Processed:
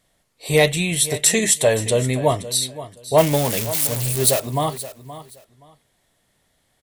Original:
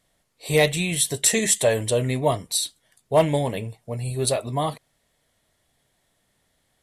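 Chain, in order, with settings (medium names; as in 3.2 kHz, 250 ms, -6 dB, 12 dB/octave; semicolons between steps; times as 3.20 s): 3.18–4.40 s: zero-crossing glitches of -15 dBFS; feedback delay 523 ms, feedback 21%, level -15 dB; trim +3 dB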